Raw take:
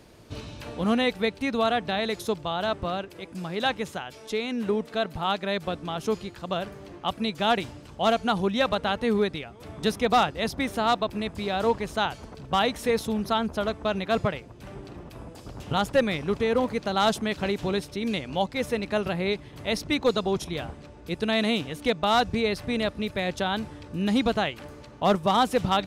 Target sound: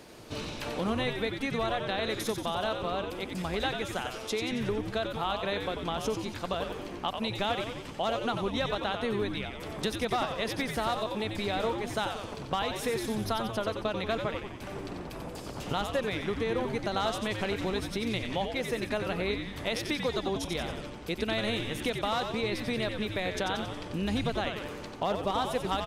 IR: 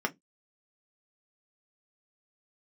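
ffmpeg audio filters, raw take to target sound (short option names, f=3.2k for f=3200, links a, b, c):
-filter_complex "[0:a]lowshelf=f=150:g=-11.5,acompressor=threshold=-34dB:ratio=4,asplit=9[a][b][c][d][e][f][g][h][i];[b]adelay=91,afreqshift=-110,volume=-6dB[j];[c]adelay=182,afreqshift=-220,volume=-10.4dB[k];[d]adelay=273,afreqshift=-330,volume=-14.9dB[l];[e]adelay=364,afreqshift=-440,volume=-19.3dB[m];[f]adelay=455,afreqshift=-550,volume=-23.7dB[n];[g]adelay=546,afreqshift=-660,volume=-28.2dB[o];[h]adelay=637,afreqshift=-770,volume=-32.6dB[p];[i]adelay=728,afreqshift=-880,volume=-37.1dB[q];[a][j][k][l][m][n][o][p][q]amix=inputs=9:normalize=0,volume=4dB"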